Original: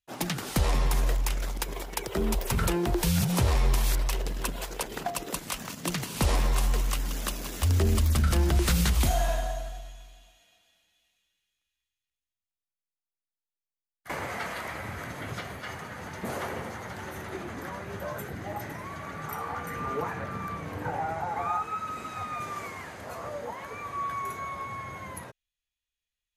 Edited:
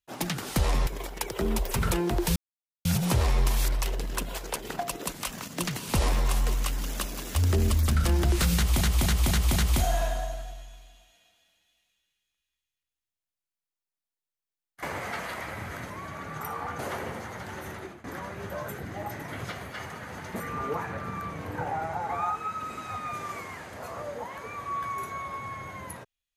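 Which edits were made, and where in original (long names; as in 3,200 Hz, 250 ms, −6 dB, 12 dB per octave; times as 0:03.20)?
0:00.87–0:01.63: remove
0:03.12: splice in silence 0.49 s
0:08.83–0:09.08: repeat, 5 plays
0:15.17–0:16.29: swap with 0:18.78–0:19.67
0:17.23–0:17.54: fade out, to −19.5 dB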